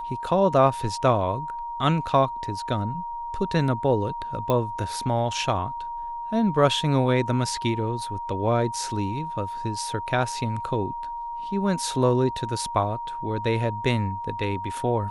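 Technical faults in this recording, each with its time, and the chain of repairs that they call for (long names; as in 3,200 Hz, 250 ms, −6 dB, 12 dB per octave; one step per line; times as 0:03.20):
whistle 940 Hz −30 dBFS
0:04.50: click −12 dBFS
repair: click removal
notch filter 940 Hz, Q 30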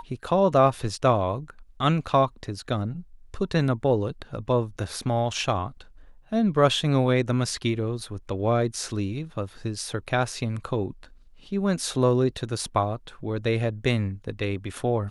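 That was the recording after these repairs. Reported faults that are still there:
none of them is left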